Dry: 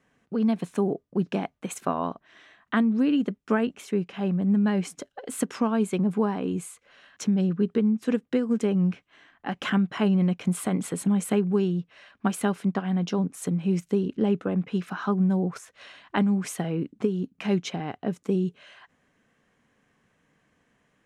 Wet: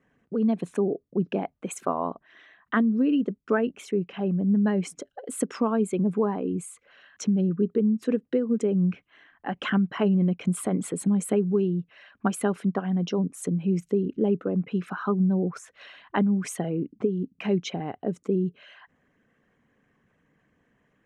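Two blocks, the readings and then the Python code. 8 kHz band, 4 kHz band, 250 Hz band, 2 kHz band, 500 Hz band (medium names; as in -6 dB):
0.0 dB, -2.5 dB, -0.5 dB, -0.5 dB, +1.5 dB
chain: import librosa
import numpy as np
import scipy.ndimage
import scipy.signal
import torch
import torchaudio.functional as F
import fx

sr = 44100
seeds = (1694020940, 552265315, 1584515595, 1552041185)

y = fx.envelope_sharpen(x, sr, power=1.5)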